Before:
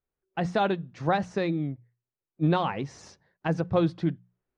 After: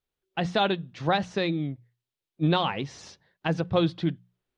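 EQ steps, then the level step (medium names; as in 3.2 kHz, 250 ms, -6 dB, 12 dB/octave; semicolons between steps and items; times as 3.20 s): peaking EQ 3.4 kHz +10 dB 1 oct; 0.0 dB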